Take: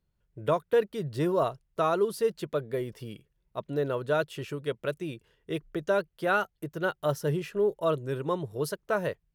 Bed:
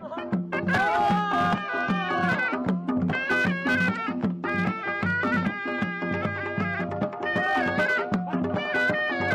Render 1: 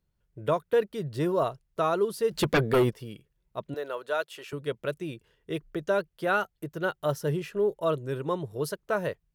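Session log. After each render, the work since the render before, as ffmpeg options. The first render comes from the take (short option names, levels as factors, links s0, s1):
-filter_complex "[0:a]asplit=3[s0][s1][s2];[s0]afade=t=out:st=2.31:d=0.02[s3];[s1]aeval=exprs='0.133*sin(PI/2*3.16*val(0)/0.133)':c=same,afade=t=in:st=2.31:d=0.02,afade=t=out:st=2.89:d=0.02[s4];[s2]afade=t=in:st=2.89:d=0.02[s5];[s3][s4][s5]amix=inputs=3:normalize=0,asettb=1/sr,asplit=3[s6][s7][s8];[s6]atrim=end=3.744[s9];[s7]atrim=start=3.74:end=4.53,asetpts=PTS-STARTPTS,afade=t=in:d=0.004:c=qsin,afade=t=out:st=0.786:d=0.004:c=qsin,highpass=580[s10];[s8]atrim=start=4.526[s11];[s9][s10]acrossfade=d=0.004:c1=hsin:c2=qsin[s12];[s12][s11]acrossfade=d=0.004:c1=qsin:c2=hsin"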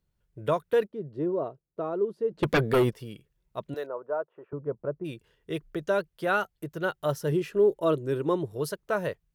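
-filter_complex "[0:a]asettb=1/sr,asplit=3[s0][s1][s2];[s0]atrim=end=0.874[s3];[s1]atrim=start=0.87:end=2.43,asetpts=PTS-STARTPTS,afade=t=in:d=0.004:c=qsin,afade=t=out:st=1.556:d=0.004:c=qsin,bandpass=f=330:t=q:w=1.1[s4];[s2]atrim=start=2.426[s5];[s3][s4]acrossfade=d=0.004:c1=hsin:c2=qsin[s6];[s6][s5]acrossfade=d=0.004:c1=qsin:c2=hsin,asplit=3[s7][s8][s9];[s7]afade=t=out:st=3.85:d=0.02[s10];[s8]lowpass=f=1100:w=0.5412,lowpass=f=1100:w=1.3066,afade=t=in:st=3.85:d=0.02,afade=t=out:st=5.04:d=0.02[s11];[s9]afade=t=in:st=5.04:d=0.02[s12];[s10][s11][s12]amix=inputs=3:normalize=0,asettb=1/sr,asplit=3[s13][s14][s15];[s13]atrim=end=7.324[s16];[s14]atrim=start=7.32:end=8.5,asetpts=PTS-STARTPTS,afade=t=in:d=0.004:c=qsin,afade=t=out:st=1.176:d=0.004:c=qsin,equalizer=f=330:t=o:w=0.77:g=7.5[s17];[s15]atrim=start=8.496[s18];[s16][s17]acrossfade=d=0.004:c1=hsin:c2=qsin[s19];[s19][s18]acrossfade=d=0.004:c1=qsin:c2=hsin"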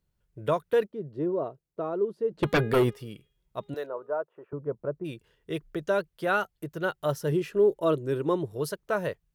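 -filter_complex "[0:a]asettb=1/sr,asplit=3[s0][s1][s2];[s0]atrim=end=2.354[s3];[s1]atrim=start=2.35:end=4.12,asetpts=PTS-STARTPTS,afade=t=in:d=0.004:c=qsin,afade=t=out:st=1.766:d=0.004:c=qsin,bandreject=f=410.9:t=h:w=4,bandreject=f=821.8:t=h:w=4,bandreject=f=1232.7:t=h:w=4,bandreject=f=1643.6:t=h:w=4,bandreject=f=2054.5:t=h:w=4,bandreject=f=2465.4:t=h:w=4,bandreject=f=2876.3:t=h:w=4,bandreject=f=3287.2:t=h:w=4,bandreject=f=3698.1:t=h:w=4,bandreject=f=4109:t=h:w=4[s4];[s2]atrim=start=4.116[s5];[s3][s4]acrossfade=d=0.004:c1=hsin:c2=qsin[s6];[s6][s5]acrossfade=d=0.004:c1=qsin:c2=hsin"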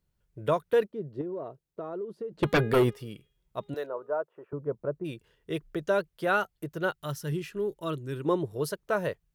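-filter_complex "[0:a]asettb=1/sr,asplit=3[s0][s1][s2];[s0]atrim=end=1.214[s3];[s1]atrim=start=1.21:end=2.34,asetpts=PTS-STARTPTS,afade=t=in:d=0.004:c=qsin,afade=t=out:st=1.126:d=0.004:c=qsin,acompressor=threshold=0.0251:ratio=6:attack=3.2:release=140:knee=1:detection=peak[s4];[s2]atrim=start=2.336[s5];[s3][s4]acrossfade=d=0.004:c1=hsin:c2=qsin[s6];[s6][s5]acrossfade=d=0.004:c1=qsin:c2=hsin,asettb=1/sr,asplit=3[s7][s8][s9];[s7]atrim=end=6.924[s10];[s8]atrim=start=6.92:end=8.25,asetpts=PTS-STARTPTS,afade=t=in:d=0.004:c=qsin,afade=t=out:st=1.326:d=0.004:c=qsin,equalizer=f=550:t=o:w=1.8:g=-12[s11];[s9]atrim=start=8.246[s12];[s10][s11]acrossfade=d=0.004:c1=hsin:c2=qsin[s13];[s13][s12]acrossfade=d=0.004:c1=qsin:c2=hsin"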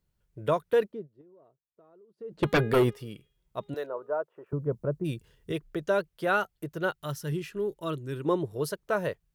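-filter_complex "[0:a]asettb=1/sr,asplit=3[s0][s1][s2];[s0]atrim=end=4.464[s3];[s1]atrim=start=4.46:end=5.52,asetpts=PTS-STARTPTS,afade=t=in:d=0.004:c=qsin,afade=t=out:st=1.056:d=0.004:c=qsin,bass=f=250:g=9,treble=f=4000:g=7[s4];[s2]atrim=start=5.516[s5];[s3][s4]acrossfade=d=0.004:c1=hsin:c2=qsin[s6];[s6][s5]acrossfade=d=0.004:c1=qsin:c2=hsin,asplit=3[s7][s8][s9];[s7]atrim=end=1.08,asetpts=PTS-STARTPTS,afade=t=out:st=0.95:d=0.13:silence=0.0841395[s10];[s8]atrim=start=1.08:end=2.17,asetpts=PTS-STARTPTS,volume=0.0841[s11];[s9]atrim=start=2.17,asetpts=PTS-STARTPTS,afade=t=in:d=0.13:silence=0.0841395[s12];[s10][s11][s12]concat=n=3:v=0:a=1"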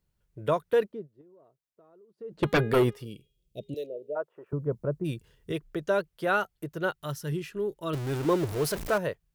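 -filter_complex "[0:a]asplit=3[s0][s1][s2];[s0]afade=t=out:st=3.04:d=0.02[s3];[s1]asuperstop=centerf=1200:order=8:qfactor=0.63,afade=t=in:st=3.04:d=0.02,afade=t=out:st=4.15:d=0.02[s4];[s2]afade=t=in:st=4.15:d=0.02[s5];[s3][s4][s5]amix=inputs=3:normalize=0,asettb=1/sr,asplit=3[s6][s7][s8];[s6]atrim=end=7.934[s9];[s7]atrim=start=7.93:end=8.98,asetpts=PTS-STARTPTS,afade=t=in:d=0.004:c=qsin,afade=t=out:st=1.046:d=0.004:c=qsin,aeval=exprs='val(0)+0.5*0.0299*sgn(val(0))':c=same[s10];[s8]atrim=start=8.976[s11];[s9][s10]acrossfade=d=0.004:c1=hsin:c2=qsin[s12];[s12][s11]acrossfade=d=0.004:c1=qsin:c2=hsin"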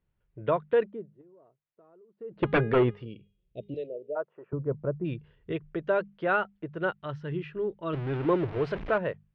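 -af "lowpass=f=2900:w=0.5412,lowpass=f=2900:w=1.3066,bandreject=f=50:t=h:w=6,bandreject=f=100:t=h:w=6,bandreject=f=150:t=h:w=6,bandreject=f=200:t=h:w=6"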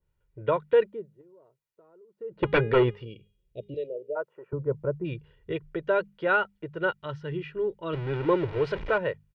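-af "aecho=1:1:2.1:0.47,adynamicequalizer=threshold=0.0126:dfrequency=1900:dqfactor=0.7:tfrequency=1900:tqfactor=0.7:attack=5:release=100:ratio=0.375:range=2:mode=boostabove:tftype=highshelf"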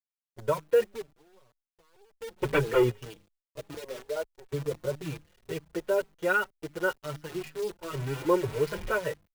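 -filter_complex "[0:a]acrusher=bits=7:dc=4:mix=0:aa=0.000001,asplit=2[s0][s1];[s1]adelay=4.8,afreqshift=2[s2];[s0][s2]amix=inputs=2:normalize=1"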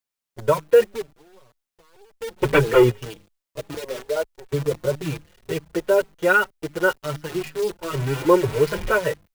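-af "volume=2.66"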